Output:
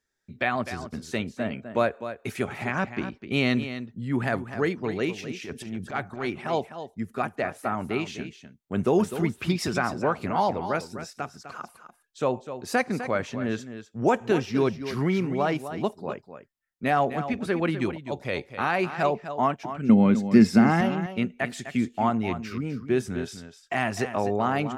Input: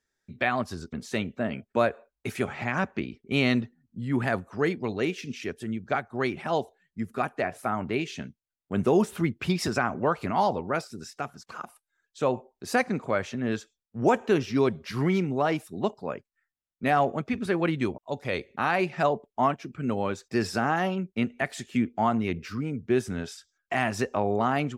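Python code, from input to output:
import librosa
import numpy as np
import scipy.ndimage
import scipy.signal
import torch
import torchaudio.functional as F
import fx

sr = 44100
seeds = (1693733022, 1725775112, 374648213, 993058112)

p1 = fx.transient(x, sr, attack_db=-12, sustain_db=7, at=(5.44, 6.29), fade=0.02)
p2 = fx.small_body(p1, sr, hz=(210.0, 2100.0), ring_ms=50, db=18, at=(19.89, 20.81))
y = p2 + fx.echo_single(p2, sr, ms=253, db=-11.0, dry=0)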